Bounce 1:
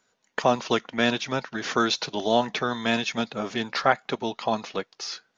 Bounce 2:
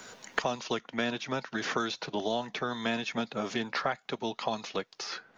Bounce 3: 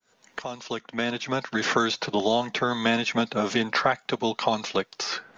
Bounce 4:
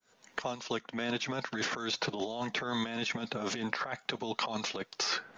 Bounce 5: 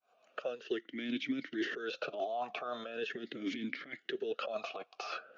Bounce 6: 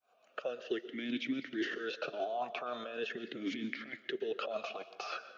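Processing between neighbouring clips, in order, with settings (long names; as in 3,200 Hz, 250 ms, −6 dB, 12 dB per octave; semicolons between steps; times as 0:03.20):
multiband upward and downward compressor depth 100%; level −8 dB
fade in at the beginning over 1.72 s; level +8 dB
compressor whose output falls as the input rises −29 dBFS, ratio −1; level −5.5 dB
formant filter swept between two vowels a-i 0.41 Hz; level +7.5 dB
dense smooth reverb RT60 0.76 s, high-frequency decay 0.8×, pre-delay 110 ms, DRR 13.5 dB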